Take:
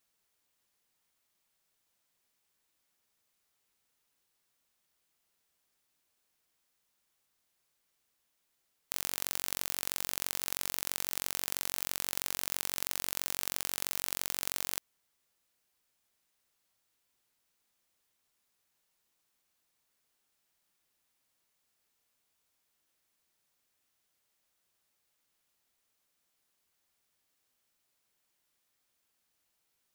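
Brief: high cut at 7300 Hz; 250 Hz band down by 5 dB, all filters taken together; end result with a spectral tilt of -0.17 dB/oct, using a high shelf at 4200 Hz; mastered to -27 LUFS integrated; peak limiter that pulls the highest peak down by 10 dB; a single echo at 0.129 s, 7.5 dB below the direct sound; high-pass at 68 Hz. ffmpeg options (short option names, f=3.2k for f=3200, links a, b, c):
-af "highpass=68,lowpass=7.3k,equalizer=f=250:t=o:g=-7,highshelf=f=4.2k:g=7.5,alimiter=limit=-18.5dB:level=0:latency=1,aecho=1:1:129:0.422,volume=15.5dB"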